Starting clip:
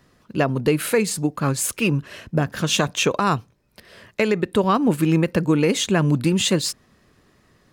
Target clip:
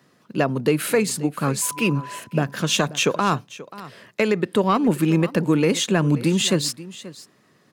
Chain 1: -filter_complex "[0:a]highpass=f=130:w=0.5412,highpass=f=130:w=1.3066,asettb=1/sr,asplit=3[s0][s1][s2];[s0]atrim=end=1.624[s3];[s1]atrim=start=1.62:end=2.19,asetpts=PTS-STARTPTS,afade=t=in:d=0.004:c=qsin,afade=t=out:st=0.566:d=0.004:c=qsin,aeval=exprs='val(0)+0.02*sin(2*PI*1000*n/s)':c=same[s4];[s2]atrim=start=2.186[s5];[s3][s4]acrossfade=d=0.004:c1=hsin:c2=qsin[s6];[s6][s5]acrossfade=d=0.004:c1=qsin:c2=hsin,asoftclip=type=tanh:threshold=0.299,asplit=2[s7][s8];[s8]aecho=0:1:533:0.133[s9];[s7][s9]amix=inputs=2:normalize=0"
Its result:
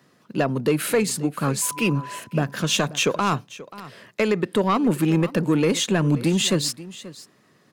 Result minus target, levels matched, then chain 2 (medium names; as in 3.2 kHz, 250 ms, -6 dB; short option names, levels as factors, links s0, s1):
saturation: distortion +13 dB
-filter_complex "[0:a]highpass=f=130:w=0.5412,highpass=f=130:w=1.3066,asettb=1/sr,asplit=3[s0][s1][s2];[s0]atrim=end=1.624[s3];[s1]atrim=start=1.62:end=2.19,asetpts=PTS-STARTPTS,afade=t=in:d=0.004:c=qsin,afade=t=out:st=0.566:d=0.004:c=qsin,aeval=exprs='val(0)+0.02*sin(2*PI*1000*n/s)':c=same[s4];[s2]atrim=start=2.186[s5];[s3][s4]acrossfade=d=0.004:c1=hsin:c2=qsin[s6];[s6][s5]acrossfade=d=0.004:c1=qsin:c2=hsin,asoftclip=type=tanh:threshold=0.75,asplit=2[s7][s8];[s8]aecho=0:1:533:0.133[s9];[s7][s9]amix=inputs=2:normalize=0"